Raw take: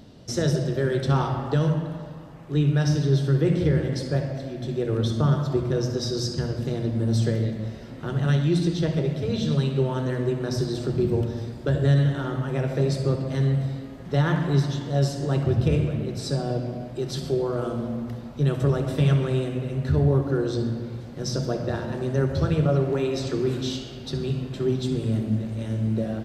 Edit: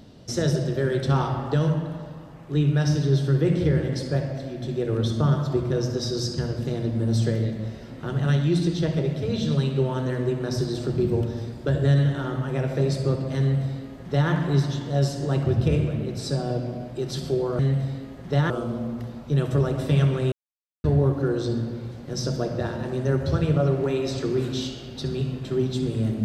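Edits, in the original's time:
13.40–14.31 s: copy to 17.59 s
19.41–19.93 s: mute

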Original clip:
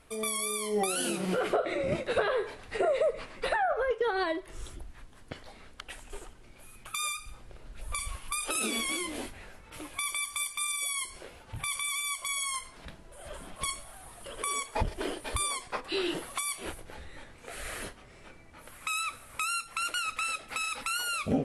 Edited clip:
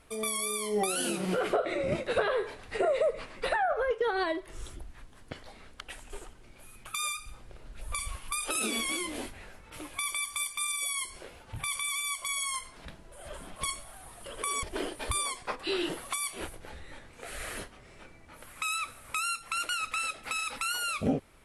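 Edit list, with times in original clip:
14.63–14.88 s: delete

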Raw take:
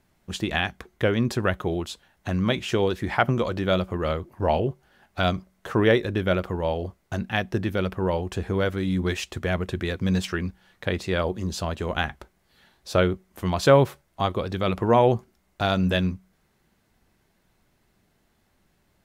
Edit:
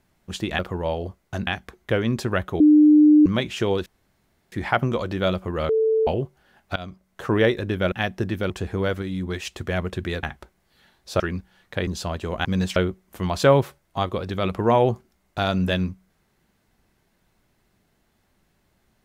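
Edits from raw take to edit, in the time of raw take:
1.72–2.38 s: bleep 301 Hz -9.5 dBFS
2.98 s: insert room tone 0.66 s
4.15–4.53 s: bleep 442 Hz -16.5 dBFS
5.22–5.69 s: fade in, from -19 dB
6.38–7.26 s: move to 0.59 s
7.84–8.26 s: delete
8.78–9.21 s: gain -3.5 dB
9.99–10.30 s: swap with 12.02–12.99 s
10.97–11.44 s: delete

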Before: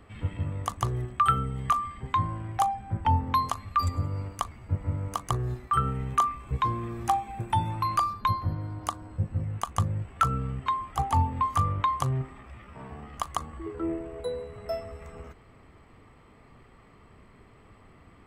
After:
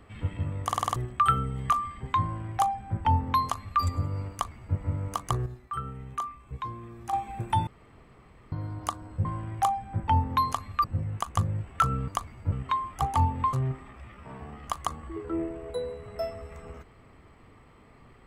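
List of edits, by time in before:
0.66 s: stutter in place 0.05 s, 6 plays
2.22–3.81 s: copy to 9.25 s
4.32–4.76 s: copy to 10.49 s
5.46–7.13 s: gain -9 dB
7.67–8.52 s: room tone
11.50–12.03 s: delete

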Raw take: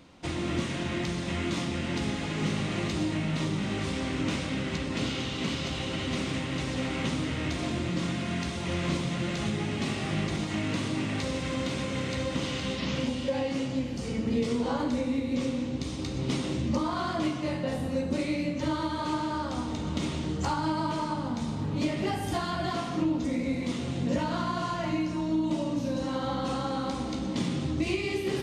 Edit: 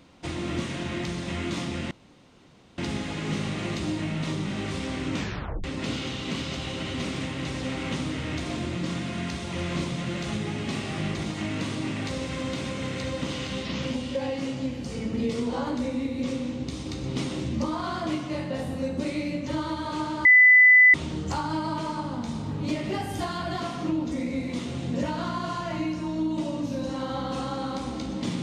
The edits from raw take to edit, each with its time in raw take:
1.91 s: insert room tone 0.87 s
4.29 s: tape stop 0.48 s
19.38–20.07 s: bleep 2 kHz -11 dBFS

